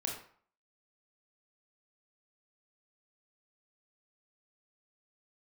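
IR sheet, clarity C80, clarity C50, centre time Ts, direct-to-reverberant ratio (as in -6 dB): 8.5 dB, 4.5 dB, 33 ms, -1.0 dB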